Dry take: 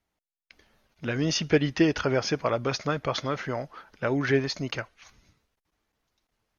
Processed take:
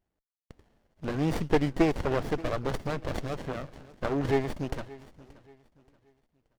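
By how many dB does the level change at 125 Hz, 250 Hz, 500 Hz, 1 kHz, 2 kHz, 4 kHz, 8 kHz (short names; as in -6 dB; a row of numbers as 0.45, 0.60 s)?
-2.0 dB, -2.5 dB, -2.5 dB, -1.5 dB, -7.0 dB, -11.0 dB, n/a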